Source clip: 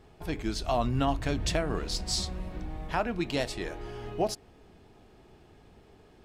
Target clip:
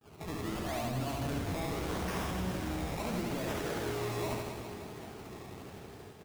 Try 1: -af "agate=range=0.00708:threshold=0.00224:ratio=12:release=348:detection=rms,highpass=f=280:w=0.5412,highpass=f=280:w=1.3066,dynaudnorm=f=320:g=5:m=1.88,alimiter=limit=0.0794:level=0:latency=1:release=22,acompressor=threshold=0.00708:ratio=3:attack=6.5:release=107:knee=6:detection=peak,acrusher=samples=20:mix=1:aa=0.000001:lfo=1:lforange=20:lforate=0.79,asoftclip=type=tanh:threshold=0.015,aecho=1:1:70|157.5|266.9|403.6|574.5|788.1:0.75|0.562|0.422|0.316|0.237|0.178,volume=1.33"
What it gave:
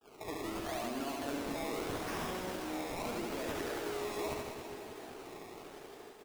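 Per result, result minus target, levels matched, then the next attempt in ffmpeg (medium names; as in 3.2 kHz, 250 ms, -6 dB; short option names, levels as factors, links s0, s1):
125 Hz band -9.5 dB; compression: peak gain reduction +4 dB
-af "agate=range=0.00708:threshold=0.00224:ratio=12:release=348:detection=rms,highpass=f=75:w=0.5412,highpass=f=75:w=1.3066,dynaudnorm=f=320:g=5:m=1.88,alimiter=limit=0.0794:level=0:latency=1:release=22,acompressor=threshold=0.00708:ratio=3:attack=6.5:release=107:knee=6:detection=peak,acrusher=samples=20:mix=1:aa=0.000001:lfo=1:lforange=20:lforate=0.79,asoftclip=type=tanh:threshold=0.015,aecho=1:1:70|157.5|266.9|403.6|574.5|788.1:0.75|0.562|0.422|0.316|0.237|0.178,volume=1.33"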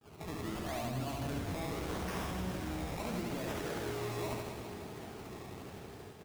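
compression: peak gain reduction +4.5 dB
-af "agate=range=0.00708:threshold=0.00224:ratio=12:release=348:detection=rms,highpass=f=75:w=0.5412,highpass=f=75:w=1.3066,dynaudnorm=f=320:g=5:m=1.88,alimiter=limit=0.0794:level=0:latency=1:release=22,acompressor=threshold=0.0158:ratio=3:attack=6.5:release=107:knee=6:detection=peak,acrusher=samples=20:mix=1:aa=0.000001:lfo=1:lforange=20:lforate=0.79,asoftclip=type=tanh:threshold=0.015,aecho=1:1:70|157.5|266.9|403.6|574.5|788.1:0.75|0.562|0.422|0.316|0.237|0.178,volume=1.33"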